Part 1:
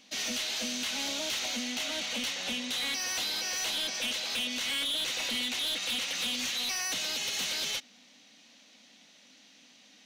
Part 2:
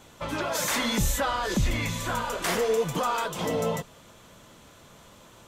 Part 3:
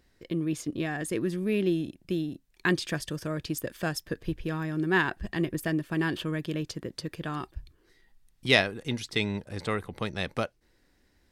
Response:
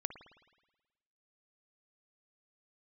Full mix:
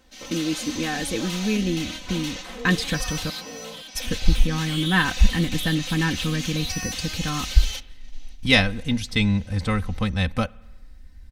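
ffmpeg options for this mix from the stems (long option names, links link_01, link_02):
-filter_complex "[0:a]volume=-2.5dB,asplit=2[link_01][link_02];[link_02]volume=-7.5dB[link_03];[1:a]lowpass=frequency=3400:poles=1,volume=-12.5dB[link_04];[2:a]asubboost=boost=10.5:cutoff=110,volume=2dB,asplit=3[link_05][link_06][link_07];[link_05]atrim=end=3.3,asetpts=PTS-STARTPTS,afade=type=out:start_time=3.296:duration=0.004:curve=hsin[link_08];[link_06]atrim=start=3.3:end=3.95,asetpts=PTS-STARTPTS,volume=0[link_09];[link_07]atrim=start=3.95,asetpts=PTS-STARTPTS,afade=type=in:duration=0.004:curve=hsin[link_10];[link_08][link_09][link_10]concat=n=3:v=0:a=1,asplit=3[link_11][link_12][link_13];[link_12]volume=-14dB[link_14];[link_13]apad=whole_len=443557[link_15];[link_01][link_15]sidechaingate=range=-33dB:threshold=-40dB:ratio=16:detection=peak[link_16];[link_16][link_04]amix=inputs=2:normalize=0,acompressor=threshold=-38dB:ratio=2,volume=0dB[link_17];[3:a]atrim=start_sample=2205[link_18];[link_03][link_14]amix=inputs=2:normalize=0[link_19];[link_19][link_18]afir=irnorm=-1:irlink=0[link_20];[link_11][link_17][link_20]amix=inputs=3:normalize=0,aecho=1:1:3.9:0.73"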